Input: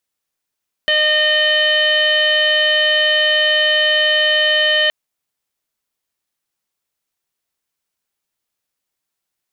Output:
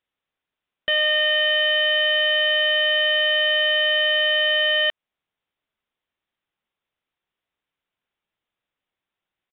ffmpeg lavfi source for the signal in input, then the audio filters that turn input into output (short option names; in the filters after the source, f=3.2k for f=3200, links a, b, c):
-f lavfi -i "aevalsrc='0.112*sin(2*PI*611*t)+0.0178*sin(2*PI*1222*t)+0.158*sin(2*PI*1833*t)+0.0282*sin(2*PI*2444*t)+0.178*sin(2*PI*3055*t)+0.0266*sin(2*PI*3666*t)+0.0237*sin(2*PI*4277*t)':d=4.02:s=44100"
-af "alimiter=limit=-12.5dB:level=0:latency=1:release=211,aresample=8000,aresample=44100"